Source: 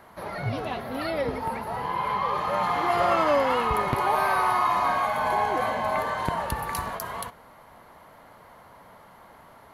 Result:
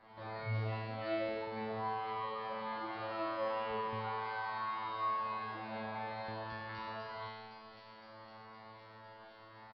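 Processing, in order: compressor 2.5:1, threshold -37 dBFS, peak gain reduction 12.5 dB; resonator 110 Hz, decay 1.5 s, harmonics all, mix 100%; on a send: thin delay 0.511 s, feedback 75%, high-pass 4200 Hz, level -4.5 dB; on the sum: downsampling 11025 Hz; gain +13 dB

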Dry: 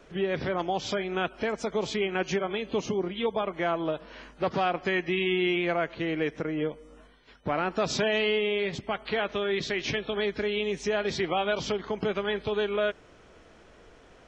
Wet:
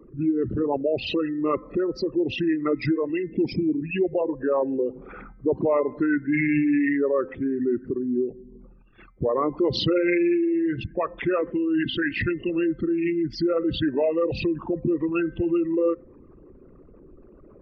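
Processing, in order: formant sharpening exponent 3; varispeed -19%; de-hum 258.7 Hz, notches 9; gain +5 dB

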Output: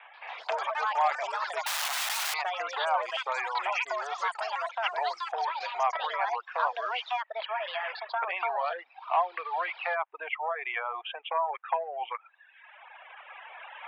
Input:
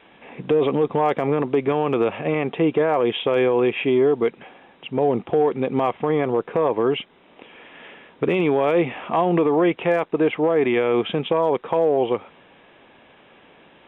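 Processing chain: 8.48–9.17 median filter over 25 samples; recorder AGC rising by 7.3 dB/s; reverb removal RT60 1.2 s; LPF 2600 Hz 24 dB/oct; reverb removal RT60 1 s; in parallel at +2.5 dB: compressor, threshold -31 dBFS, peak gain reduction 15 dB; on the sum: vibrato 6 Hz 14 cents; echoes that change speed 0.137 s, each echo +6 st, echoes 3, each echo -6 dB; 1.66–2.34 wrapped overs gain 21.5 dB; steep high-pass 720 Hz 36 dB/oct; gain -4 dB

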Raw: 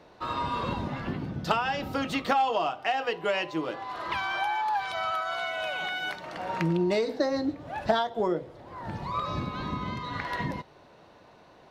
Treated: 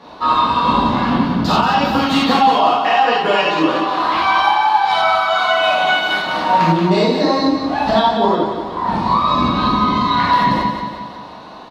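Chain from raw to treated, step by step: graphic EQ 250/1000/4000 Hz +8/+12/+10 dB; compressor, threshold -21 dBFS, peak gain reduction 9.5 dB; on a send: feedback echo 0.179 s, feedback 51%, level -7 dB; on the sum: non-linear reverb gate 0.12 s flat, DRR -7.5 dB; gain +1.5 dB

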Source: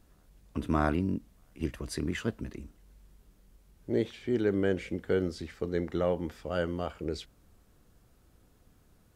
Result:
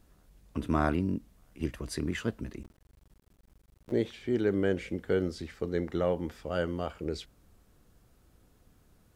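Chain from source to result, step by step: 2.63–3.92 cycle switcher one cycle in 2, muted

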